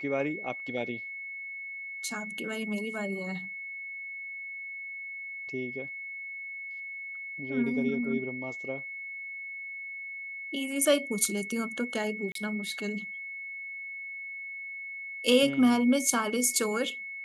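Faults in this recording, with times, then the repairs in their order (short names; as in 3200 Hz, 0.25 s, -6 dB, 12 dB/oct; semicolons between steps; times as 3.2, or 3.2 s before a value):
tone 2200 Hz -37 dBFS
12.32–12.35 gap 33 ms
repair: notch 2200 Hz, Q 30; interpolate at 12.32, 33 ms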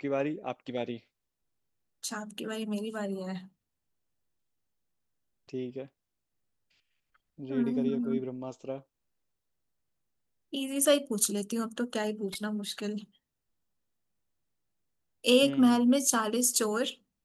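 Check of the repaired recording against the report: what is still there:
none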